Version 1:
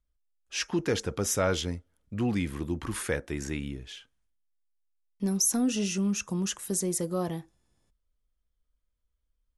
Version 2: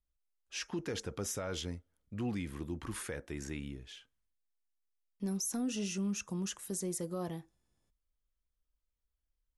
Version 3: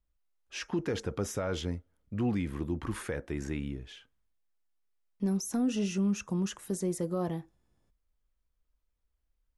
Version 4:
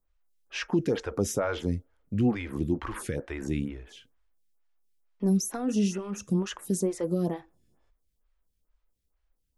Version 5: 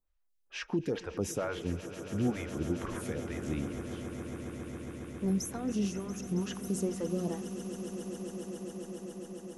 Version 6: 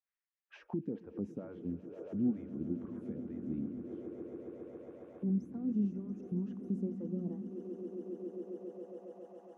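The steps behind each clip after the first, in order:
brickwall limiter −21.5 dBFS, peak gain reduction 7.5 dB; level −7 dB
high-shelf EQ 2,900 Hz −10 dB; level +6.5 dB
phaser with staggered stages 2.2 Hz; level +7 dB
echo that builds up and dies away 137 ms, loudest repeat 8, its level −15.5 dB; level −6 dB
envelope filter 230–1,900 Hz, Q 2.6, down, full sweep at −33.5 dBFS; level +1 dB

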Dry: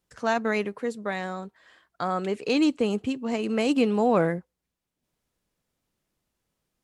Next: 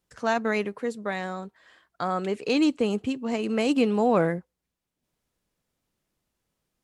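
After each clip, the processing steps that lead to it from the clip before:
no processing that can be heard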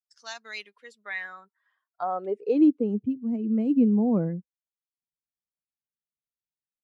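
spectral dynamics exaggerated over time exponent 1.5
band-pass filter sweep 4,900 Hz → 220 Hz, 0:00.44–0:03.06
level +6.5 dB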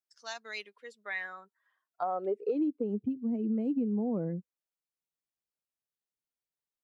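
parametric band 460 Hz +5 dB 1.6 octaves
downward compressor 6 to 1, threshold −25 dBFS, peak gain reduction 13 dB
level −3 dB

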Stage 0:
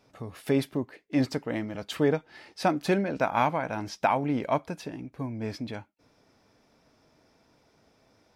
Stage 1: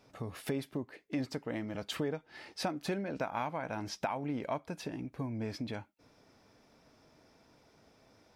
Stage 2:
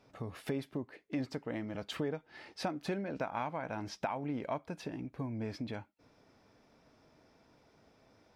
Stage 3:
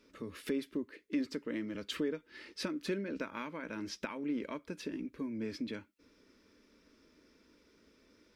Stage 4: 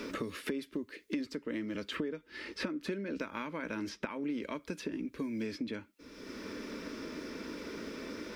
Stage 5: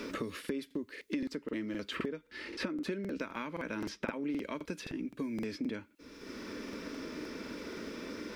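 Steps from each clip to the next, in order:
downward compressor 3 to 1, threshold −35 dBFS, peak gain reduction 12.5 dB
high-shelf EQ 5,900 Hz −8 dB; level −1 dB
phaser with its sweep stopped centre 310 Hz, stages 4; level +3 dB
multiband upward and downward compressor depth 100%; level +1 dB
regular buffer underruns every 0.26 s, samples 2,048, repeat, from 0:00.40

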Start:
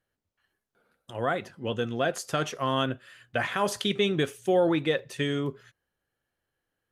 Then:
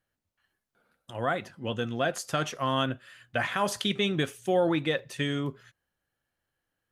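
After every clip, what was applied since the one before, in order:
parametric band 420 Hz −5 dB 0.52 octaves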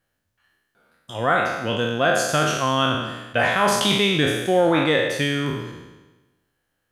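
peak hold with a decay on every bin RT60 1.16 s
level +5.5 dB

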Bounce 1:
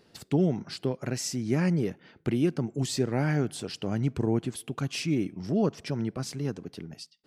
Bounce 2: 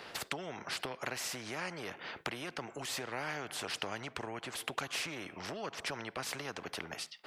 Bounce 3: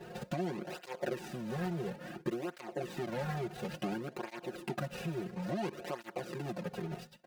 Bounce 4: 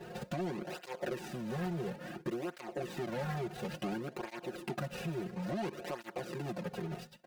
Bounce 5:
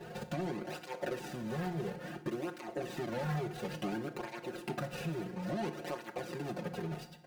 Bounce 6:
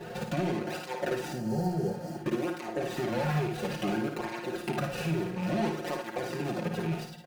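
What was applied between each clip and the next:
downward compressor 5 to 1, threshold −34 dBFS, peak gain reduction 13 dB; three-way crossover with the lows and the highs turned down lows −22 dB, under 530 Hz, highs −18 dB, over 2,800 Hz; every bin compressed towards the loudest bin 2 to 1; level +9 dB
running median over 41 samples; comb filter 5.6 ms, depth 92%; through-zero flanger with one copy inverted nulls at 0.58 Hz, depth 3.9 ms; level +8.5 dB
soft clipping −29.5 dBFS, distortion −18 dB; level +1 dB
feedback delay network reverb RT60 0.88 s, low-frequency decay 1.1×, high-frequency decay 0.75×, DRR 9 dB
loose part that buzzes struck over −40 dBFS, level −42 dBFS; healed spectral selection 0:01.35–0:02.17, 940–4,100 Hz after; ambience of single reflections 55 ms −6 dB, 73 ms −10.5 dB; level +5.5 dB

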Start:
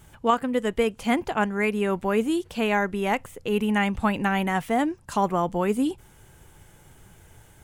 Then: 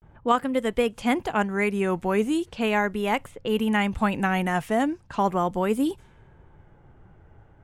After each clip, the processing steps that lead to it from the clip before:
low-pass that shuts in the quiet parts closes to 1,100 Hz, open at −23 dBFS
pitch vibrato 0.38 Hz 75 cents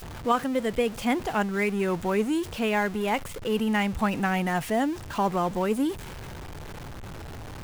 converter with a step at zero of −31 dBFS
level −3 dB

